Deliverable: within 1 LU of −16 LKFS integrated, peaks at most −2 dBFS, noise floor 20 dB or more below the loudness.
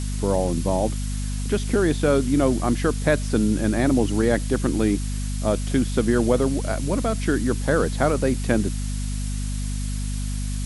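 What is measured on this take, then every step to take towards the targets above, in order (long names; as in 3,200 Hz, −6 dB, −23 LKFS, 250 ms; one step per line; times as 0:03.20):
mains hum 50 Hz; hum harmonics up to 250 Hz; level of the hum −24 dBFS; background noise floor −27 dBFS; target noise floor −43 dBFS; integrated loudness −23.0 LKFS; sample peak −6.0 dBFS; target loudness −16.0 LKFS
→ mains-hum notches 50/100/150/200/250 Hz
noise reduction from a noise print 16 dB
level +7 dB
brickwall limiter −2 dBFS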